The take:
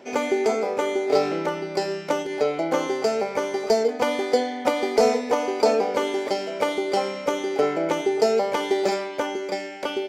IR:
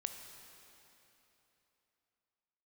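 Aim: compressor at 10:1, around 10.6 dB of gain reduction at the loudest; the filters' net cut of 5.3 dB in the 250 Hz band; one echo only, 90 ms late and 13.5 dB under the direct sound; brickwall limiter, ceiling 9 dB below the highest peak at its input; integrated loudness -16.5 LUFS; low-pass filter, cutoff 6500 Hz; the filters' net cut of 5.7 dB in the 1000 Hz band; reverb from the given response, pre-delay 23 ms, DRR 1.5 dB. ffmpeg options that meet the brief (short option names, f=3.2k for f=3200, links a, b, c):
-filter_complex "[0:a]lowpass=6.5k,equalizer=f=250:t=o:g=-7,equalizer=f=1k:t=o:g=-7.5,acompressor=threshold=-28dB:ratio=10,alimiter=limit=-24dB:level=0:latency=1,aecho=1:1:90:0.211,asplit=2[a][b];[1:a]atrim=start_sample=2205,adelay=23[c];[b][c]afir=irnorm=-1:irlink=0,volume=-0.5dB[d];[a][d]amix=inputs=2:normalize=0,volume=14.5dB"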